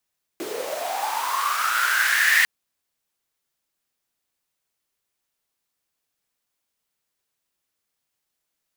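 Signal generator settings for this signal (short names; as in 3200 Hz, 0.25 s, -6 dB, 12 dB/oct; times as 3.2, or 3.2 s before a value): swept filtered noise pink, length 2.05 s highpass, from 330 Hz, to 1900 Hz, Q 10, linear, gain ramp +14 dB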